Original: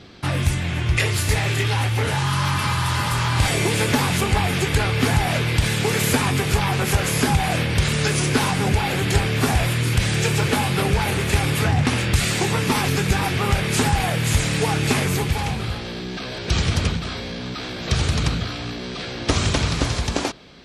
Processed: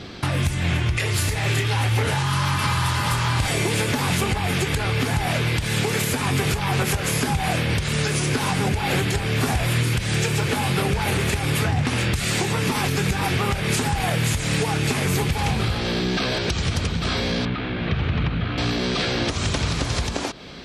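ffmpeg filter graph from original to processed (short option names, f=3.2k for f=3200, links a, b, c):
-filter_complex "[0:a]asettb=1/sr,asplit=3[a][b][c];[a]atrim=end=17.454[d];[b]atrim=start=17.45:end=18.58,asetpts=PTS-STARTPTS,afade=t=in:d=0.004:c=qsin,afade=t=out:st=1.126:d=0.004:c=qsin,lowpass=f=3k:w=0.5412,lowpass=f=3k:w=1.3066,acrossover=split=110|310|870[e][f][g][h];[e]acompressor=threshold=-33dB:ratio=3[i];[f]acompressor=threshold=-31dB:ratio=3[j];[g]acompressor=threshold=-47dB:ratio=3[k];[h]acompressor=threshold=-39dB:ratio=3[l];[i][j][k][l]amix=inputs=4:normalize=0[m];[c]atrim=start=18.576[n];[d][m]acrossfade=d=0.004:c1=hsin:c2=qsin[o];[o][n]acrossfade=d=0.004:c1=qsin:c2=hsin,acompressor=threshold=-24dB:ratio=10,alimiter=limit=-19.5dB:level=0:latency=1:release=246,volume=7.5dB"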